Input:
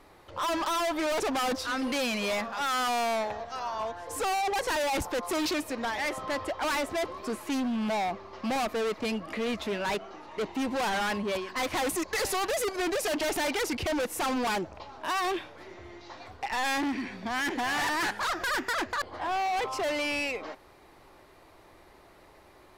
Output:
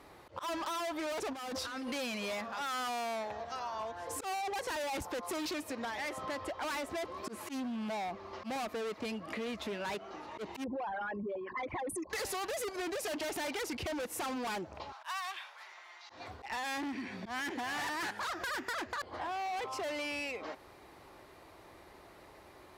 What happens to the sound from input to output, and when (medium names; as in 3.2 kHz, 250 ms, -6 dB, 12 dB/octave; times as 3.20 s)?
1.33–1.89 s: compressor with a negative ratio -36 dBFS
10.64–12.10 s: resonances exaggerated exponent 3
14.92–16.10 s: high-pass 870 Hz 24 dB/octave
whole clip: high-pass 46 Hz; slow attack 135 ms; compression 5:1, threshold -37 dBFS